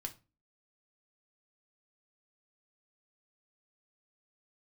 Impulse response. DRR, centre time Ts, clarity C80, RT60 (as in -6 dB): 4.0 dB, 7 ms, 23.5 dB, 0.30 s